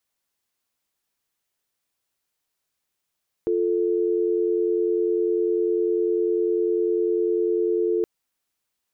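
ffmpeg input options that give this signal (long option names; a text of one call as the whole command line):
ffmpeg -f lavfi -i "aevalsrc='0.0794*(sin(2*PI*350*t)+sin(2*PI*440*t))':duration=4.57:sample_rate=44100" out.wav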